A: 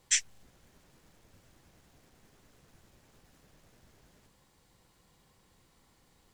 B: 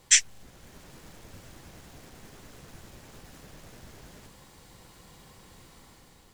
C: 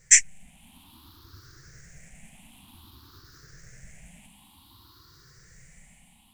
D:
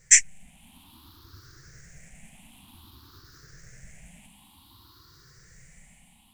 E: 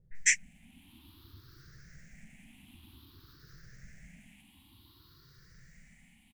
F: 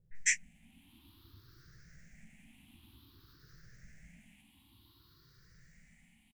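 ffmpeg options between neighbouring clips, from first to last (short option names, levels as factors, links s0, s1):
-af "dynaudnorm=f=180:g=7:m=1.88,volume=2.51"
-af "afftfilt=real='re*pow(10,20/40*sin(2*PI*(0.54*log(max(b,1)*sr/1024/100)/log(2)-(0.54)*(pts-256)/sr)))':imag='im*pow(10,20/40*sin(2*PI*(0.54*log(max(b,1)*sr/1024/100)/log(2)-(0.54)*(pts-256)/sr)))':win_size=1024:overlap=0.75,equalizer=f=520:w=1.2:g=-15,volume=0.631"
-af anull
-filter_complex "[0:a]equalizer=f=250:t=o:w=1:g=4,equalizer=f=500:t=o:w=1:g=-3,equalizer=f=1000:t=o:w=1:g=-6,equalizer=f=2000:t=o:w=1:g=3,equalizer=f=8000:t=o:w=1:g=-10,acrossover=split=730[s0][s1];[s1]adelay=150[s2];[s0][s2]amix=inputs=2:normalize=0,volume=0.631"
-filter_complex "[0:a]asplit=2[s0][s1];[s1]adelay=18,volume=0.251[s2];[s0][s2]amix=inputs=2:normalize=0,volume=0.596"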